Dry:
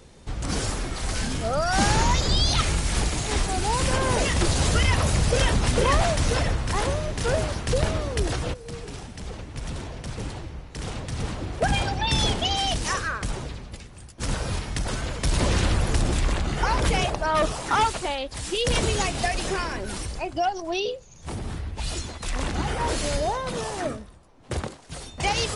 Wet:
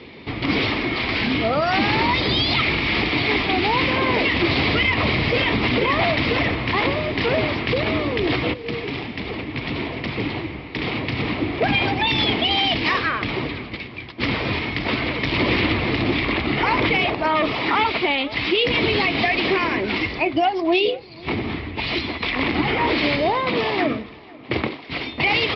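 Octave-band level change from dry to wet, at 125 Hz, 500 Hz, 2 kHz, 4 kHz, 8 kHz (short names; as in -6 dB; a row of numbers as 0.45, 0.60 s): -1.0 dB, +5.0 dB, +10.0 dB, +6.0 dB, under -20 dB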